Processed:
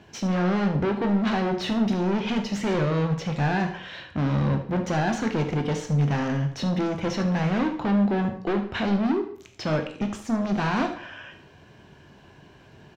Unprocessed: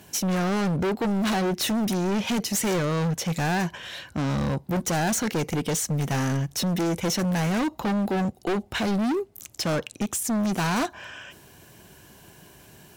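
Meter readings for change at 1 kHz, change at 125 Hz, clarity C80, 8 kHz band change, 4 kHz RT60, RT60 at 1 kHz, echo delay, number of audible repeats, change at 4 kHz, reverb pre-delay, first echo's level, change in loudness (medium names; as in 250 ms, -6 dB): +0.5 dB, +2.0 dB, 13.0 dB, -14.0 dB, 0.45 s, 0.50 s, 75 ms, 1, -4.5 dB, 7 ms, -13.5 dB, +0.5 dB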